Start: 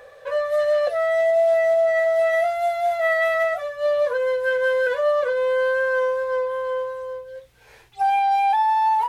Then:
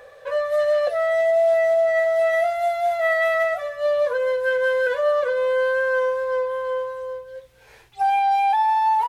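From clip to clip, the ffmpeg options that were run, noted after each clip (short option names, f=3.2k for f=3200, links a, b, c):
-af "aecho=1:1:253:0.075"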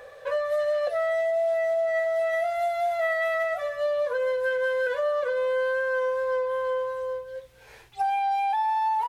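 -af "acompressor=threshold=-24dB:ratio=4"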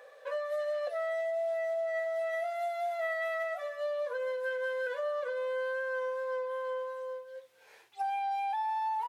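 -af "highpass=360,volume=-7.5dB"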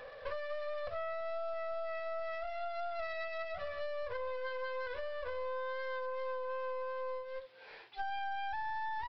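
-af "acompressor=threshold=-40dB:ratio=6,aresample=11025,aeval=exprs='clip(val(0),-1,0.00168)':c=same,aresample=44100,volume=6dB"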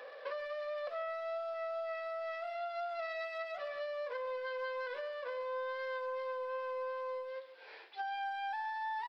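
-filter_complex "[0:a]highpass=f=290:w=0.5412,highpass=f=290:w=1.3066,asplit=2[a][b];[b]adelay=140,highpass=300,lowpass=3.4k,asoftclip=type=hard:threshold=-38.5dB,volume=-14dB[c];[a][c]amix=inputs=2:normalize=0"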